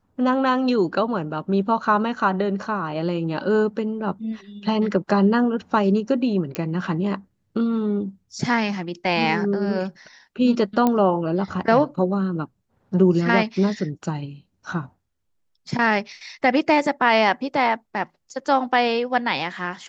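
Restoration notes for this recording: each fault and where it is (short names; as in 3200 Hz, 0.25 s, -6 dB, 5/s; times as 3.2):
6.55 pop -10 dBFS
10.87 pop -8 dBFS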